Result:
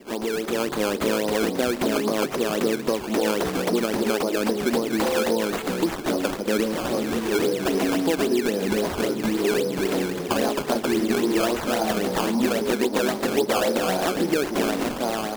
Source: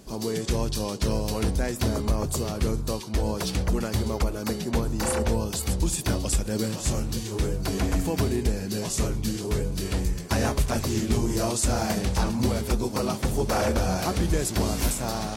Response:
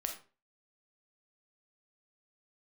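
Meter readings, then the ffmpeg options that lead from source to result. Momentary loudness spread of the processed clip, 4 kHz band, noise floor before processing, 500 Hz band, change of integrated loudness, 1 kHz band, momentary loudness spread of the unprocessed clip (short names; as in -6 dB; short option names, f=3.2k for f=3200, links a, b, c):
3 LU, +3.5 dB, -34 dBFS, +7.0 dB, +3.0 dB, +5.0 dB, 4 LU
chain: -af "highpass=f=230:w=0.5412,highpass=f=230:w=1.3066,acompressor=threshold=-33dB:ratio=6,lowpass=5.8k,equalizer=f=420:w=0.62:g=4.5,dynaudnorm=f=210:g=5:m=5.5dB,adynamicequalizer=threshold=0.00562:dfrequency=2100:dqfactor=0.76:tfrequency=2100:tqfactor=0.76:attack=5:release=100:ratio=0.375:range=2:mode=cutabove:tftype=bell,acrusher=samples=16:mix=1:aa=0.000001:lfo=1:lforange=16:lforate=3.7,volume=5.5dB"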